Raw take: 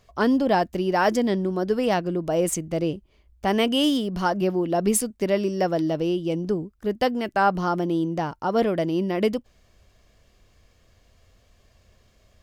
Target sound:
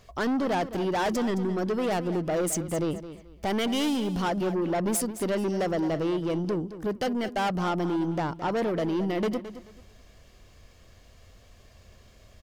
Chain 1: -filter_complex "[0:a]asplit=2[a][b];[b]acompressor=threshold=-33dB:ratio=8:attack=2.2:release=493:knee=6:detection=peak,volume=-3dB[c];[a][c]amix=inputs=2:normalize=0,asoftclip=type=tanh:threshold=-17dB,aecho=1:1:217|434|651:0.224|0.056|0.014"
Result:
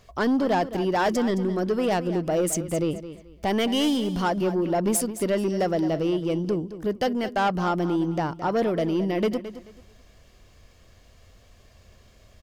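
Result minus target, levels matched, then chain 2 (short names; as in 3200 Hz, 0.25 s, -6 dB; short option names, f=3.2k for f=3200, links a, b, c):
soft clip: distortion -6 dB
-filter_complex "[0:a]asplit=2[a][b];[b]acompressor=threshold=-33dB:ratio=8:attack=2.2:release=493:knee=6:detection=peak,volume=-3dB[c];[a][c]amix=inputs=2:normalize=0,asoftclip=type=tanh:threshold=-23.5dB,aecho=1:1:217|434|651:0.224|0.056|0.014"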